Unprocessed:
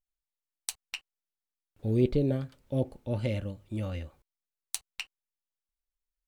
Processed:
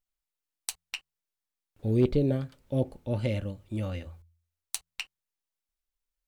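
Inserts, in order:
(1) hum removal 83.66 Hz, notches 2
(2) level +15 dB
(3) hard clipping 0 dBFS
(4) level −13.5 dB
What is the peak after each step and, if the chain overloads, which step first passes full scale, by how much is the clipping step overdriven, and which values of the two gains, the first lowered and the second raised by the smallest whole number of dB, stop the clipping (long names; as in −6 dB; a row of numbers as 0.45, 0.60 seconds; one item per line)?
−10.0, +5.0, 0.0, −13.5 dBFS
step 2, 5.0 dB
step 2 +10 dB, step 4 −8.5 dB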